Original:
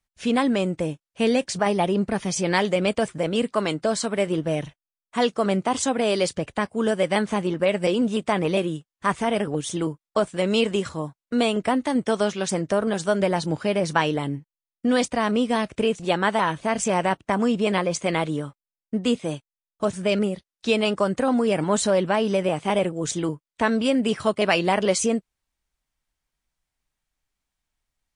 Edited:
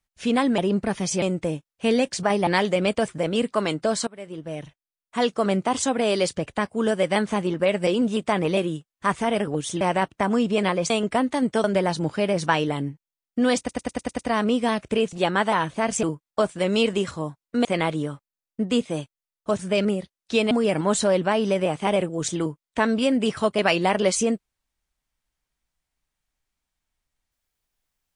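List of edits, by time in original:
1.83–2.47 s: move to 0.58 s
4.07–5.36 s: fade in, from -22.5 dB
9.81–11.43 s: swap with 16.90–17.99 s
12.17–13.11 s: delete
15.06 s: stutter 0.10 s, 7 plays
20.85–21.34 s: delete

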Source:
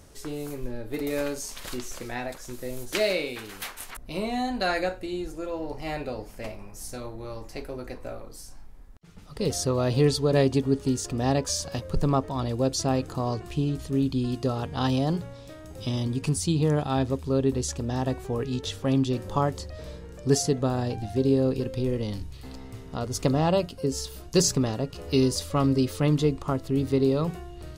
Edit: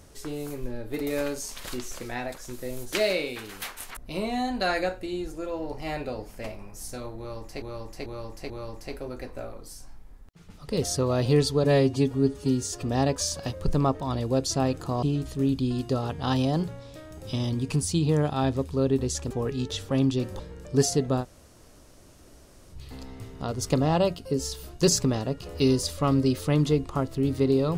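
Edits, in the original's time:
7.18–7.62 s: loop, 4 plays
10.32–11.11 s: stretch 1.5×
13.31–13.56 s: delete
17.84–18.24 s: delete
19.33–19.92 s: delete
20.75–22.27 s: room tone, crossfade 0.06 s

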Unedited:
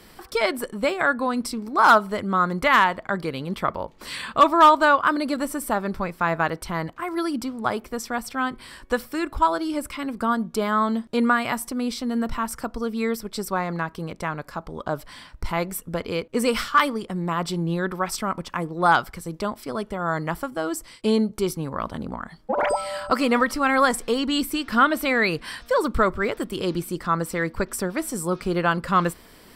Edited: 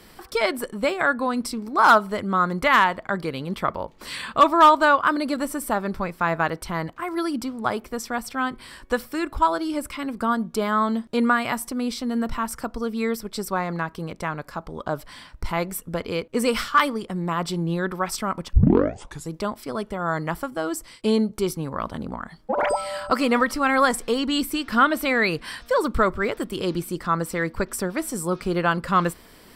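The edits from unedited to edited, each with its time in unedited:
18.53 s: tape start 0.77 s

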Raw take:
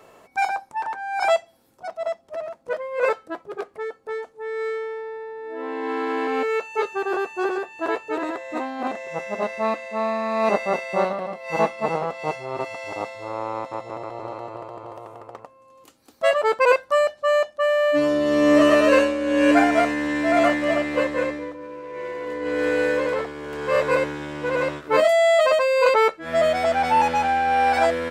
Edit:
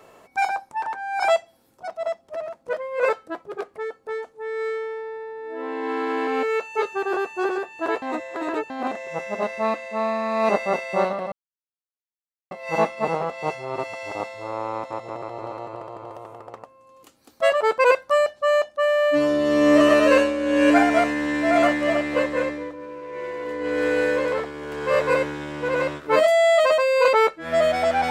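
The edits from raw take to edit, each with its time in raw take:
8.02–8.70 s: reverse
11.32 s: insert silence 1.19 s

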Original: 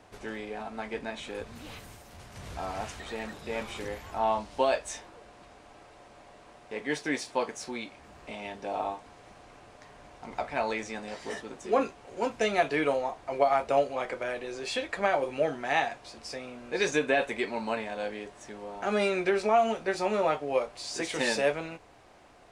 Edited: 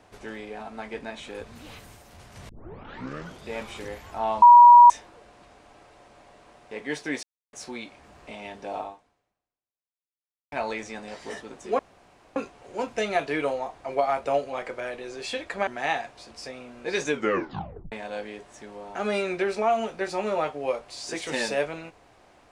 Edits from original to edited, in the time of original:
2.49 s: tape start 0.99 s
4.42–4.90 s: bleep 962 Hz -7 dBFS
7.23–7.53 s: mute
8.78–10.52 s: fade out exponential
11.79 s: insert room tone 0.57 s
15.10–15.54 s: delete
16.97 s: tape stop 0.82 s

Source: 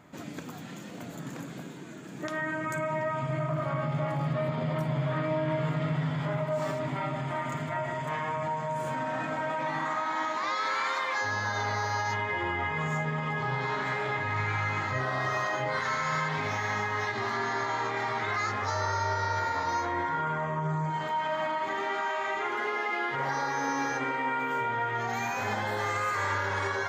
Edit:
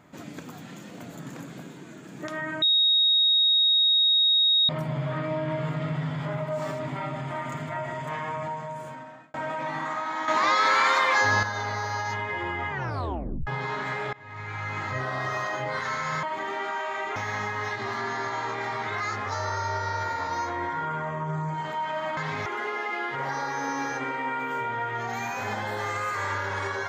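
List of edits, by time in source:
2.62–4.69 s: bleep 3.76 kHz -17.5 dBFS
8.39–9.34 s: fade out
10.28–11.43 s: gain +8.5 dB
12.70 s: tape stop 0.77 s
14.13–14.89 s: fade in, from -23.5 dB
16.23–16.52 s: swap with 21.53–22.46 s

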